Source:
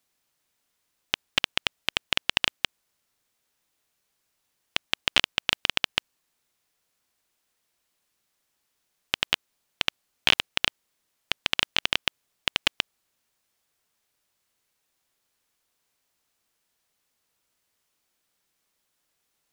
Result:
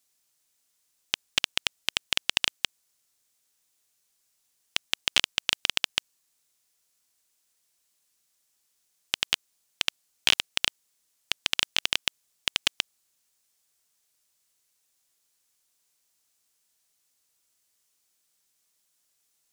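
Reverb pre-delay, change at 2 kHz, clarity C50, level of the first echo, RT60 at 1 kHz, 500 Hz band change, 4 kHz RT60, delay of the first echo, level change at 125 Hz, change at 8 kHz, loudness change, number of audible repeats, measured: no reverb audible, −2.5 dB, no reverb audible, no echo audible, no reverb audible, −5.5 dB, no reverb audible, no echo audible, −5.5 dB, +5.5 dB, −1.0 dB, no echo audible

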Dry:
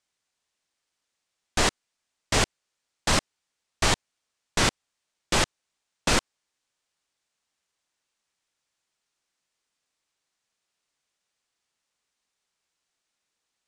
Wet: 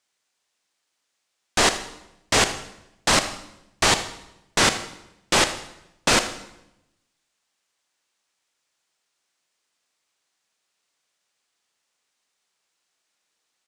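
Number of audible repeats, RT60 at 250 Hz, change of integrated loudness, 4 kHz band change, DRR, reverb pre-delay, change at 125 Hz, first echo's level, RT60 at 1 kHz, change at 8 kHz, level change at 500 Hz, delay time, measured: 1, 1.0 s, +4.5 dB, +5.5 dB, 9.0 dB, 26 ms, −1.5 dB, −17.0 dB, 0.80 s, +5.5 dB, +4.5 dB, 79 ms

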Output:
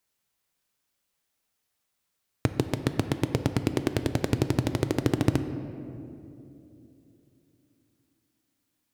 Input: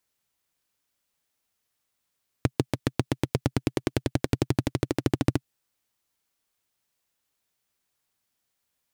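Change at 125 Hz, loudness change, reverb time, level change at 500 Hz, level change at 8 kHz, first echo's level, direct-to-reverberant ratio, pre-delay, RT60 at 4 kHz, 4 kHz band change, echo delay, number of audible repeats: +1.0 dB, +0.5 dB, 3.0 s, +1.0 dB, 0.0 dB, no echo audible, 9.0 dB, 5 ms, 1.4 s, +0.5 dB, no echo audible, no echo audible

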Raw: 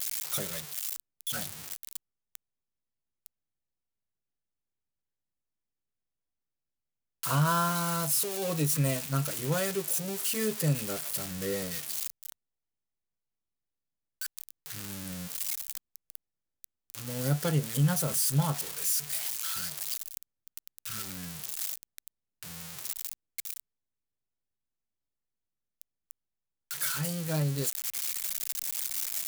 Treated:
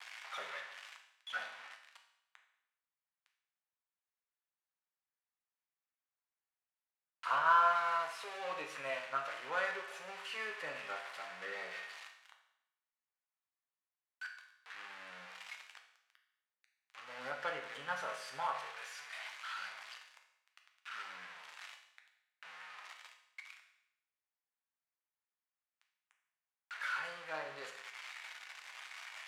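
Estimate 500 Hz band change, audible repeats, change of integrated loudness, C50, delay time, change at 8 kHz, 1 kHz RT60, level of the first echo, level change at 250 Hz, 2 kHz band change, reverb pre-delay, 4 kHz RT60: −9.0 dB, no echo audible, −9.0 dB, 7.0 dB, no echo audible, −26.0 dB, 0.80 s, no echo audible, −27.5 dB, +1.5 dB, 7 ms, 0.80 s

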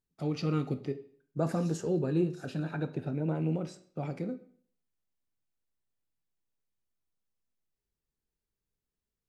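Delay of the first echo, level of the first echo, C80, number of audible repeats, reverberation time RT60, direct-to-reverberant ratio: no echo audible, no echo audible, 17.5 dB, no echo audible, 0.55 s, 9.0 dB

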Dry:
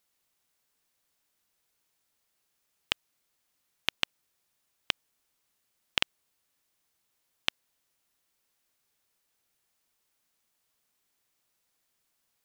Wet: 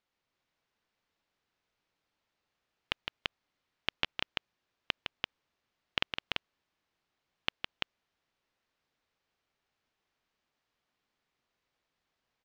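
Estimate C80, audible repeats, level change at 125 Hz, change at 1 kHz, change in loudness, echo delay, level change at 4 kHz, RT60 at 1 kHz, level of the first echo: no reverb audible, 2, +1.5 dB, +0.5 dB, −4.5 dB, 160 ms, −2.5 dB, no reverb audible, −6.5 dB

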